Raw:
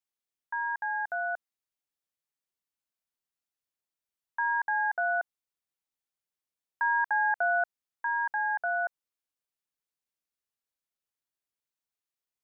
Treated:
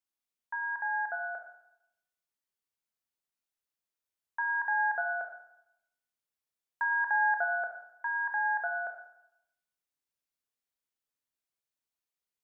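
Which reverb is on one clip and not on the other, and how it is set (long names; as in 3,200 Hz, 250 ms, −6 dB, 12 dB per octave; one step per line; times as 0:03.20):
four-comb reverb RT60 0.82 s, combs from 25 ms, DRR 4 dB
level −2.5 dB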